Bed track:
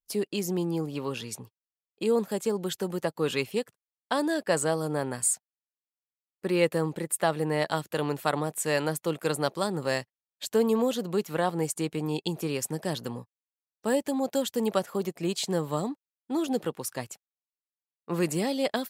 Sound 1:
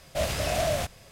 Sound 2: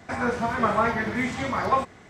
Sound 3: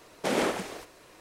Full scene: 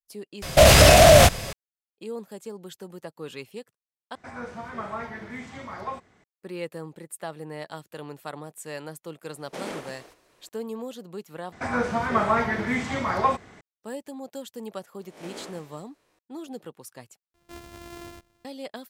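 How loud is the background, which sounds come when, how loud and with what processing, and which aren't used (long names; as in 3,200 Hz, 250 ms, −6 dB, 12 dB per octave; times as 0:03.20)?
bed track −10 dB
0:00.42: overwrite with 1 −2 dB + boost into a limiter +20.5 dB
0:04.15: overwrite with 2 −11.5 dB
0:09.29: mix in 3 −8.5 dB
0:11.52: overwrite with 2
0:14.99: mix in 3 −16.5 dB + peak hold with a rise ahead of every peak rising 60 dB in 0.55 s
0:17.34: overwrite with 1 −16 dB + samples sorted by size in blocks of 128 samples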